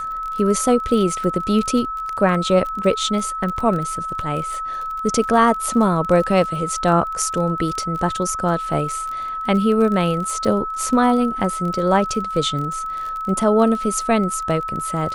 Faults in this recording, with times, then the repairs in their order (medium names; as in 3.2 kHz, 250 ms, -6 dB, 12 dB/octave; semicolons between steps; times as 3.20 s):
crackle 27 per s -26 dBFS
whine 1.3 kHz -24 dBFS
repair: de-click; band-stop 1.3 kHz, Q 30